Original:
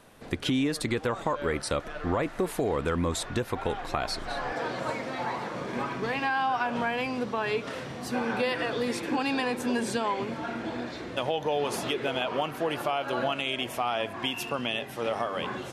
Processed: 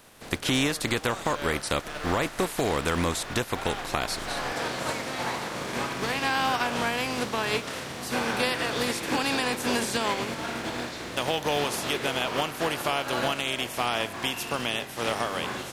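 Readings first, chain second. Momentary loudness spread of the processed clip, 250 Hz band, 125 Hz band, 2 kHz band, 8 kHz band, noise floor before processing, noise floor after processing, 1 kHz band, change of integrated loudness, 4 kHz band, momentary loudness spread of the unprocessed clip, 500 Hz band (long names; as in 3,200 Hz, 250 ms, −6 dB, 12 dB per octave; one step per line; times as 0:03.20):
5 LU, 0.0 dB, +1.5 dB, +4.0 dB, +7.5 dB, −41 dBFS, −40 dBFS, +1.5 dB, +2.0 dB, +5.0 dB, 5 LU, 0.0 dB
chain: compressing power law on the bin magnitudes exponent 0.59
level +1.5 dB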